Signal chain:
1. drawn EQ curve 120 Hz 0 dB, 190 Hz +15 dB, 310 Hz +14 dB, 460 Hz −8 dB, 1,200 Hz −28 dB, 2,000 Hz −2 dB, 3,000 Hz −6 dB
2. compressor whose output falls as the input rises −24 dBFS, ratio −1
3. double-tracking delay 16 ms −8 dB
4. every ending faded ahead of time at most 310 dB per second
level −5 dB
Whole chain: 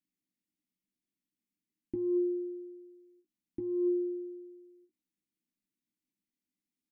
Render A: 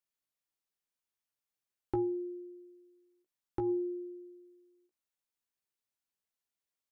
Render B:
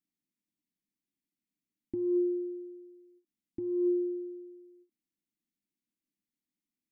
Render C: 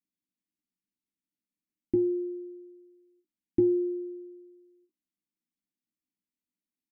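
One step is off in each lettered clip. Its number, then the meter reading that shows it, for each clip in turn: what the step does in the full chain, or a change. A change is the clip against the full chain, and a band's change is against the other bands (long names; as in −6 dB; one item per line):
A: 1, change in crest factor +4.0 dB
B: 3, change in integrated loudness +1.5 LU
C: 2, change in crest factor +7.5 dB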